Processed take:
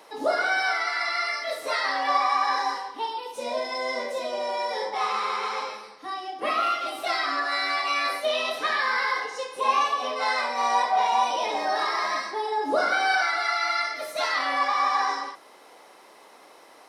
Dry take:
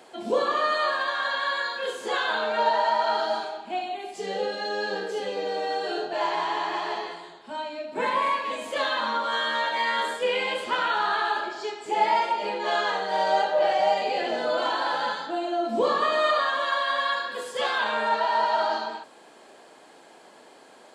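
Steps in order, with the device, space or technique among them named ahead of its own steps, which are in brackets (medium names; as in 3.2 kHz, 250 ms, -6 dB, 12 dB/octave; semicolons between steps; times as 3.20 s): nightcore (tape speed +24%)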